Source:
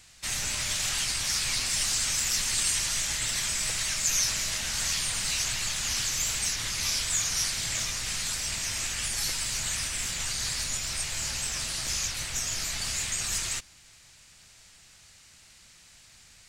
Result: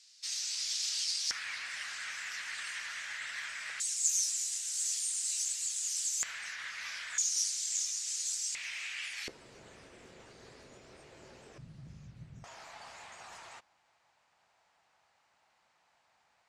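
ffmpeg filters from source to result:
ffmpeg -i in.wav -af "asetnsamples=nb_out_samples=441:pad=0,asendcmd='1.31 bandpass f 1700;3.8 bandpass f 7700;6.23 bandpass f 1700;7.18 bandpass f 6700;8.55 bandpass f 2300;9.28 bandpass f 410;11.58 bandpass f 150;12.44 bandpass f 830',bandpass=frequency=5000:width_type=q:width=2.6:csg=0" out.wav

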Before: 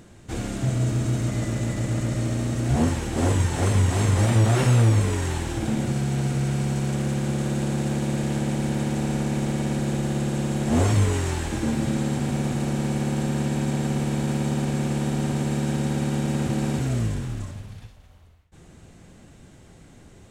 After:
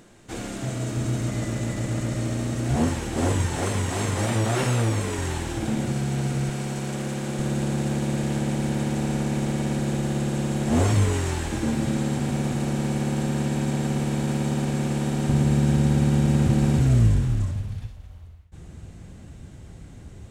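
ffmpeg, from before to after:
ffmpeg -i in.wav -af "asetnsamples=nb_out_samples=441:pad=0,asendcmd='0.97 equalizer g -3;3.59 equalizer g -9;5.18 equalizer g -2.5;6.49 equalizer g -10.5;7.39 equalizer g -0.5;15.29 equalizer g 11',equalizer=frequency=63:width_type=o:width=2.6:gain=-10.5" out.wav

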